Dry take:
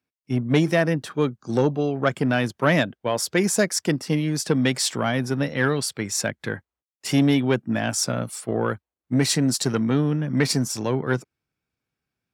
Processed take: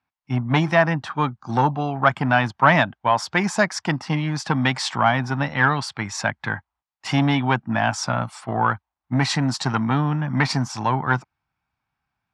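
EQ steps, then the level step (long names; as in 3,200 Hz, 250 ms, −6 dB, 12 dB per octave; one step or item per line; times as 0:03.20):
low-pass filter 5,400 Hz 12 dB per octave
spectral tilt −2.5 dB per octave
low shelf with overshoot 630 Hz −10.5 dB, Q 3
+6.0 dB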